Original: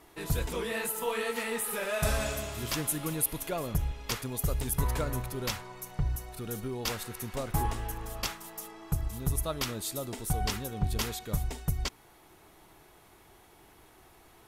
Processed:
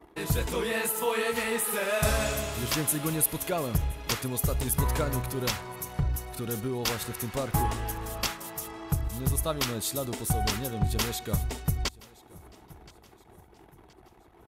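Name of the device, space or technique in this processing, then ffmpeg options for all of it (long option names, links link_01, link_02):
parallel compression: -filter_complex "[0:a]asplit=2[link_01][link_02];[link_02]acompressor=threshold=-45dB:ratio=6,volume=-3.5dB[link_03];[link_01][link_03]amix=inputs=2:normalize=0,highpass=48,anlmdn=0.00398,aecho=1:1:1023|2046|3069:0.0708|0.0304|0.0131,volume=3dB"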